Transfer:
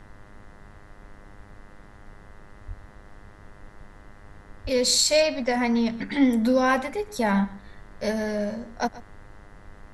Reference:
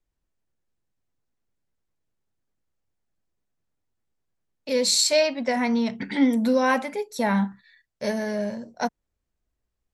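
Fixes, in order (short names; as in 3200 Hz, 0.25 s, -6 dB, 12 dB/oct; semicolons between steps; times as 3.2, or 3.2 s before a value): de-hum 101.8 Hz, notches 20; 2.67–2.79 HPF 140 Hz 24 dB/oct; 4.63–4.75 HPF 140 Hz 24 dB/oct; noise print and reduce 30 dB; inverse comb 0.129 s -18 dB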